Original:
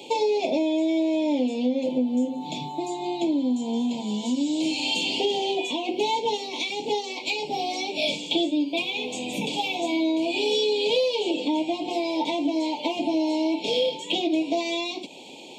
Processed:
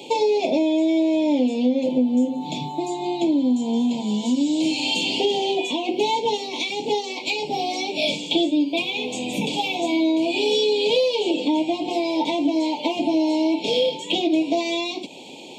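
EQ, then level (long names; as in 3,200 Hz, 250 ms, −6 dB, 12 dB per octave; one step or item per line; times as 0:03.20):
low-shelf EQ 230 Hz +4.5 dB
+2.5 dB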